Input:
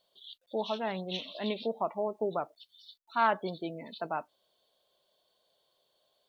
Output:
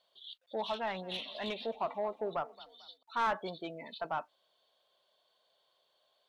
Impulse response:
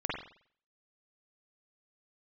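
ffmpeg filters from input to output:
-filter_complex "[0:a]equalizer=frequency=390:width_type=o:width=2.4:gain=-6.5,asplit=2[link_01][link_02];[link_02]highpass=frequency=720:poles=1,volume=18dB,asoftclip=type=tanh:threshold=-17dB[link_03];[link_01][link_03]amix=inputs=2:normalize=0,lowpass=frequency=1600:poles=1,volume=-6dB,asettb=1/sr,asplit=3[link_04][link_05][link_06];[link_04]atrim=end=0.774[link_07];[link_05]atrim=start=0.77:end=3.03,asetpts=PTS-STARTPTS,afade=type=in:duration=0.004:curve=qsin,afade=type=out:start_time=2.256:duration=0.004:curve=qsin,asplit=4[link_08][link_09][link_10][link_11];[link_09]adelay=222,afreqshift=31,volume=-20dB[link_12];[link_10]adelay=444,afreqshift=62,volume=-27.1dB[link_13];[link_11]adelay=666,afreqshift=93,volume=-34.3dB[link_14];[link_08][link_12][link_13][link_14]amix=inputs=4:normalize=0,atrim=end_sample=99666[link_15];[link_06]atrim=start=3.026[link_16];[link_07][link_15]acrossfade=duration=0.004:curve1=hsin:curve2=qsin[link_17];[link_17][link_16]acrossfade=duration=0.004:curve1=qsin:curve2=hsin,volume=-4.5dB"

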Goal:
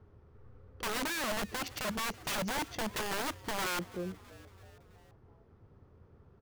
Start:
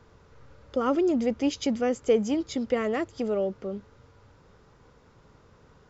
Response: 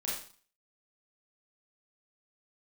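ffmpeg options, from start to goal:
-filter_complex "[0:a]equalizer=frequency=100:width_type=o:width=0.67:gain=7,equalizer=frequency=1000:width_type=o:width=0.67:gain=-5,equalizer=frequency=6300:width_type=o:width=0.67:gain=6,asetrate=40517,aresample=44100,adynamicsmooth=sensitivity=3.5:basefreq=1700,aeval=exprs='(mod(17.8*val(0)+1,2)-1)/17.8':channel_layout=same,asplit=2[link_01][link_02];[link_02]asplit=4[link_03][link_04][link_05][link_06];[link_03]adelay=330,afreqshift=120,volume=-20dB[link_07];[link_04]adelay=660,afreqshift=240,volume=-25dB[link_08];[link_05]adelay=990,afreqshift=360,volume=-30.1dB[link_09];[link_06]adelay=1320,afreqshift=480,volume=-35.1dB[link_10];[link_07][link_08][link_09][link_10]amix=inputs=4:normalize=0[link_11];[link_01][link_11]amix=inputs=2:normalize=0,volume=-4.5dB"

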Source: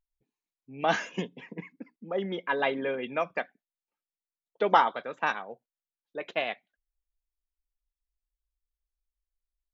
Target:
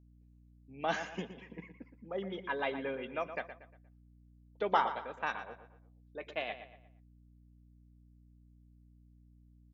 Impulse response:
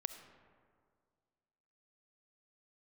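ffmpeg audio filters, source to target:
-filter_complex "[0:a]asplit=2[link_01][link_02];[link_02]adelay=118,lowpass=frequency=3900:poles=1,volume=-10.5dB,asplit=2[link_03][link_04];[link_04]adelay=118,lowpass=frequency=3900:poles=1,volume=0.39,asplit=2[link_05][link_06];[link_06]adelay=118,lowpass=frequency=3900:poles=1,volume=0.39,asplit=2[link_07][link_08];[link_08]adelay=118,lowpass=frequency=3900:poles=1,volume=0.39[link_09];[link_01][link_03][link_05][link_07][link_09]amix=inputs=5:normalize=0,aeval=exprs='val(0)+0.00251*(sin(2*PI*60*n/s)+sin(2*PI*2*60*n/s)/2+sin(2*PI*3*60*n/s)/3+sin(2*PI*4*60*n/s)/4+sin(2*PI*5*60*n/s)/5)':channel_layout=same,volume=-7.5dB"

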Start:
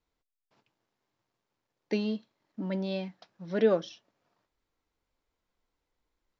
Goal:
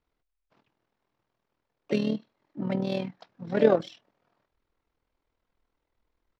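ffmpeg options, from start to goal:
ffmpeg -i in.wav -filter_complex "[0:a]asplit=3[link_01][link_02][link_03];[link_02]asetrate=29433,aresample=44100,atempo=1.49831,volume=-17dB[link_04];[link_03]asetrate=58866,aresample=44100,atempo=0.749154,volume=-10dB[link_05];[link_01][link_04][link_05]amix=inputs=3:normalize=0,tremolo=f=40:d=0.667,adynamicsmooth=sensitivity=7:basefreq=4500,volume=6dB" out.wav

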